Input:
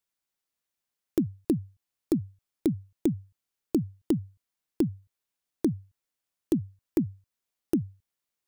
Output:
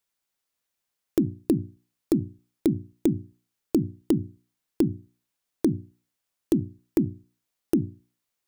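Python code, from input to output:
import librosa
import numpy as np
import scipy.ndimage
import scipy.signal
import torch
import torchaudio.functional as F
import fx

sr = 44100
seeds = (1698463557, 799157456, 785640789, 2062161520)

y = fx.hum_notches(x, sr, base_hz=60, count=6)
y = fx.end_taper(y, sr, db_per_s=320.0)
y = y * 10.0 ** (4.0 / 20.0)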